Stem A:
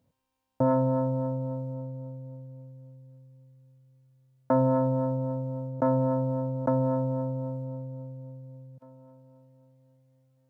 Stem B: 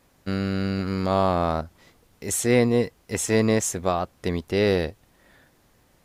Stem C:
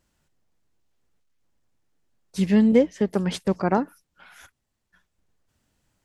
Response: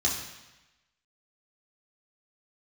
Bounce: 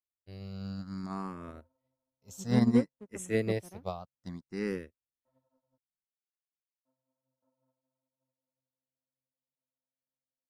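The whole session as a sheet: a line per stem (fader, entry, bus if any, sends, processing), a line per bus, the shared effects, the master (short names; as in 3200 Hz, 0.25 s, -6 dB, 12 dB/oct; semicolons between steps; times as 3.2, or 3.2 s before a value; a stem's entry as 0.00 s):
-17.0 dB, 0.75 s, muted 5.78–6.85, no send, per-bin compression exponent 0.4; bell 65 Hz -14 dB 1.2 oct; detuned doubles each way 36 cents
+1.5 dB, 0.00 s, no send, EQ curve 190 Hz 0 dB, 540 Hz -5 dB, 3700 Hz 0 dB, 5700 Hz +7 dB; endless phaser +0.59 Hz
-10.0 dB, 0.00 s, no send, median filter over 41 samples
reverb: off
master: high shelf 3000 Hz -9 dB; upward expander 2.5:1, over -50 dBFS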